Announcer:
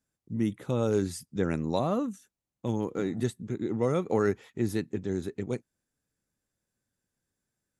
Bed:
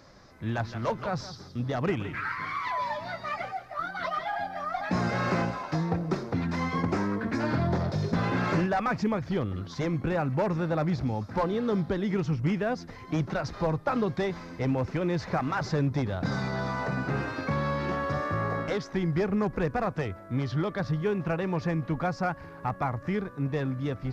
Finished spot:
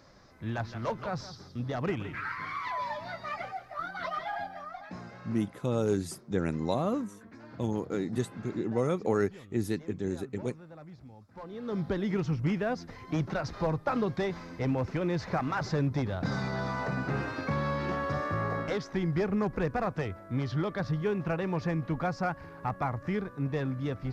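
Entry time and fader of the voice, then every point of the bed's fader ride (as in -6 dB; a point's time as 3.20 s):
4.95 s, -1.5 dB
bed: 4.39 s -3.5 dB
5.22 s -21 dB
11.31 s -21 dB
11.86 s -2 dB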